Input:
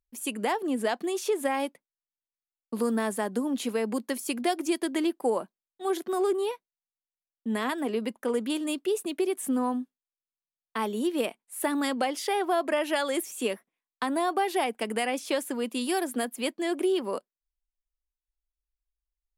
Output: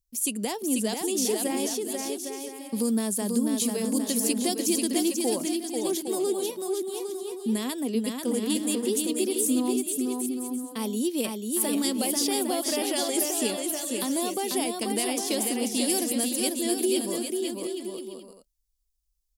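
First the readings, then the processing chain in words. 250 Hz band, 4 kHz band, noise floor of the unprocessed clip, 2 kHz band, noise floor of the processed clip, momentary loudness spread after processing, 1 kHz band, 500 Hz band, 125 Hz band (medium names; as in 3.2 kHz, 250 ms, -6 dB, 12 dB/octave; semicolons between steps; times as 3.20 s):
+4.0 dB, +5.5 dB, under -85 dBFS, -4.5 dB, -73 dBFS, 7 LU, -5.0 dB, 0.0 dB, no reading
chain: FFT filter 140 Hz 0 dB, 1.5 kHz -19 dB, 5.3 kHz +3 dB; on a send: bouncing-ball echo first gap 490 ms, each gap 0.65×, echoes 5; on the sum: trim +7 dB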